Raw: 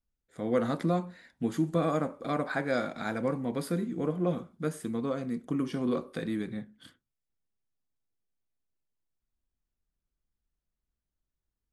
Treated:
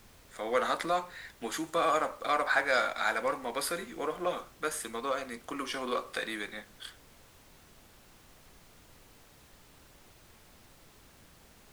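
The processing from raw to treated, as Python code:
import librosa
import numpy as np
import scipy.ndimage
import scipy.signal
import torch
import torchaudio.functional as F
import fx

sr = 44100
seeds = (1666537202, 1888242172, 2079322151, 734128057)

p1 = scipy.signal.sosfilt(scipy.signal.butter(2, 870.0, 'highpass', fs=sr, output='sos'), x)
p2 = fx.dmg_noise_colour(p1, sr, seeds[0], colour='pink', level_db=-67.0)
p3 = np.clip(p2, -10.0 ** (-38.5 / 20.0), 10.0 ** (-38.5 / 20.0))
p4 = p2 + (p3 * librosa.db_to_amplitude(-7.5))
y = p4 * librosa.db_to_amplitude(6.5)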